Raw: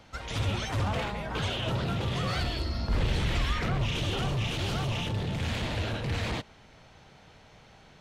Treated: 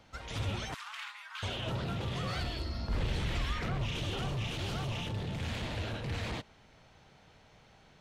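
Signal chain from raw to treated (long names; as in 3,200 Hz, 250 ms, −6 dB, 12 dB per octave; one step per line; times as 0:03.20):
0:00.74–0:01.43: Butterworth high-pass 1,100 Hz 36 dB per octave
level −5.5 dB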